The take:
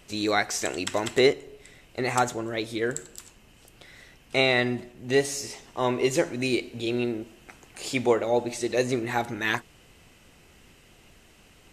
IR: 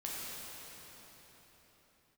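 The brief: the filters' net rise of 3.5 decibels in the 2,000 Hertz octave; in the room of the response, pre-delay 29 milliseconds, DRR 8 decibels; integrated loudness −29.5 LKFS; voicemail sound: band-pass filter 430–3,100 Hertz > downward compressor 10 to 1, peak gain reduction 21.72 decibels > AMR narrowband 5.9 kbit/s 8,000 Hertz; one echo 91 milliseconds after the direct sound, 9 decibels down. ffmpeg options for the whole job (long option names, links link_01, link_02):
-filter_complex "[0:a]equalizer=frequency=2000:width_type=o:gain=5,aecho=1:1:91:0.355,asplit=2[link_01][link_02];[1:a]atrim=start_sample=2205,adelay=29[link_03];[link_02][link_03]afir=irnorm=-1:irlink=0,volume=-10.5dB[link_04];[link_01][link_04]amix=inputs=2:normalize=0,highpass=430,lowpass=3100,acompressor=threshold=-38dB:ratio=10,volume=15dB" -ar 8000 -c:a libopencore_amrnb -b:a 5900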